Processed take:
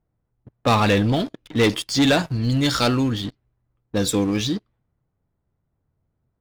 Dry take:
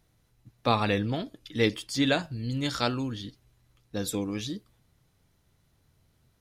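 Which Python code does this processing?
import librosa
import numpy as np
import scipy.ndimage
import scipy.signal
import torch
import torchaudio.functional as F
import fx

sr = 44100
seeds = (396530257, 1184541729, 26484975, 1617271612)

y = fx.env_lowpass(x, sr, base_hz=1100.0, full_db=-26.5)
y = fx.leveller(y, sr, passes=3)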